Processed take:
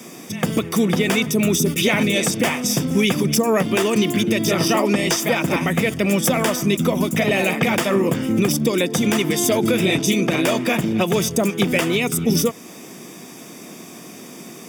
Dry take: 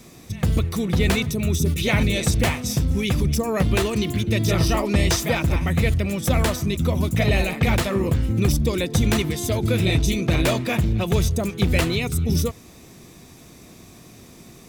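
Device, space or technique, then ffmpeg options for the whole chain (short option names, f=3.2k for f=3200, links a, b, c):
PA system with an anti-feedback notch: -af "highpass=f=180:w=0.5412,highpass=f=180:w=1.3066,asuperstop=centerf=4100:order=4:qfactor=5.9,alimiter=limit=-17dB:level=0:latency=1:release=244,volume=9dB"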